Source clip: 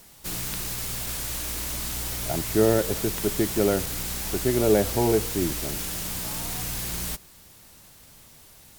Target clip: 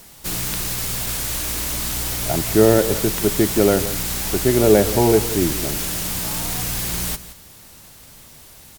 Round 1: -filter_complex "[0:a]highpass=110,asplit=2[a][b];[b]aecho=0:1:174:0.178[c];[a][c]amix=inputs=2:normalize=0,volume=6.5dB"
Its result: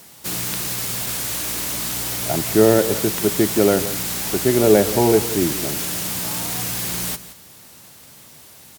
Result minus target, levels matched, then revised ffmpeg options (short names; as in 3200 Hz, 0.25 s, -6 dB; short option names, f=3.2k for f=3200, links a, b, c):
125 Hz band -2.5 dB
-filter_complex "[0:a]asplit=2[a][b];[b]aecho=0:1:174:0.178[c];[a][c]amix=inputs=2:normalize=0,volume=6.5dB"